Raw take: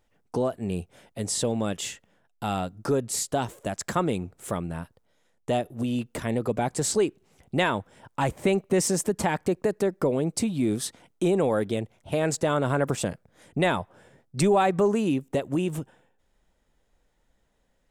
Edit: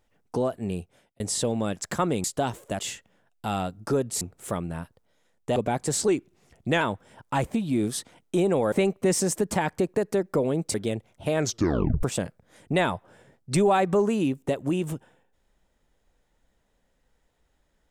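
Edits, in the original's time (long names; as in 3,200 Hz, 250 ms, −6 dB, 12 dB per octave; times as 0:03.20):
0:00.67–0:01.20: fade out
0:01.77–0:03.19: swap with 0:03.74–0:04.21
0:05.56–0:06.47: remove
0:06.99–0:07.67: play speed 93%
0:10.42–0:11.60: move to 0:08.40
0:12.24: tape stop 0.65 s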